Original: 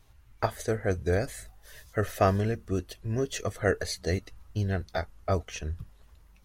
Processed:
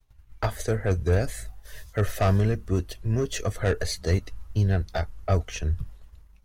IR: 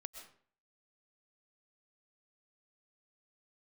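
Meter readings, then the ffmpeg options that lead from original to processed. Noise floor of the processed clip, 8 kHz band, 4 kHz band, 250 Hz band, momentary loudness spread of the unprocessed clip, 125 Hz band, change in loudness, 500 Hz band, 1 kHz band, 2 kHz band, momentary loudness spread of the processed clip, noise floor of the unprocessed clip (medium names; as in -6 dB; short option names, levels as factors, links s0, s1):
-54 dBFS, +3.0 dB, +3.0 dB, +2.5 dB, 12 LU, +6.5 dB, +3.5 dB, +1.0 dB, -0.5 dB, +0.5 dB, 9 LU, -58 dBFS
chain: -filter_complex "[0:a]agate=range=0.0224:threshold=0.00355:ratio=3:detection=peak,acrossover=split=140[s0][s1];[s1]asoftclip=type=tanh:threshold=0.075[s2];[s0][s2]amix=inputs=2:normalize=0,lowshelf=f=73:g=10.5,volume=1.5"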